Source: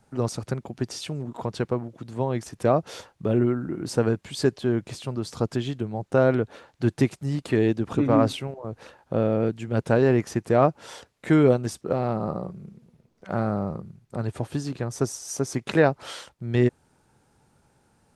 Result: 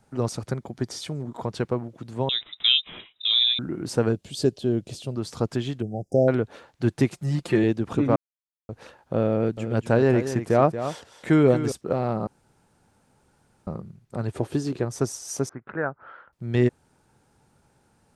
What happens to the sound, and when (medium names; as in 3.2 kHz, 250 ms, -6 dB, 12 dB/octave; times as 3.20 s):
0.48–1.48 s: band-stop 2.7 kHz, Q 6.9
2.29–3.59 s: frequency inversion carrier 3.8 kHz
4.12–5.16 s: high-order bell 1.4 kHz -10.5 dB
5.82–6.28 s: brick-wall FIR band-stop 790–4800 Hz
7.12–7.64 s: comb 5.7 ms
8.16–8.69 s: mute
9.34–11.72 s: delay 231 ms -10.5 dB
12.27–13.67 s: room tone
14.33–14.85 s: peaking EQ 380 Hz +8.5 dB
15.49–16.33 s: four-pole ladder low-pass 1.6 kHz, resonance 65%